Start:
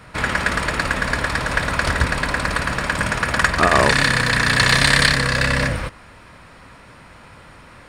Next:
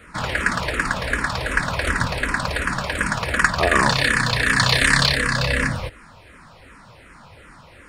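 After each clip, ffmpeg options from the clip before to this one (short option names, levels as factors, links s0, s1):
-filter_complex "[0:a]asplit=2[s0][s1];[s1]afreqshift=-2.7[s2];[s0][s2]amix=inputs=2:normalize=1,volume=1.12"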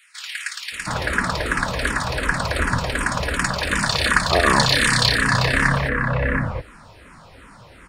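-filter_complex "[0:a]acrossover=split=2100[s0][s1];[s0]adelay=720[s2];[s2][s1]amix=inputs=2:normalize=0,volume=1.19"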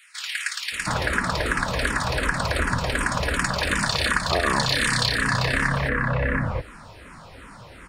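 -af "acompressor=threshold=0.0794:ratio=3,volume=1.19"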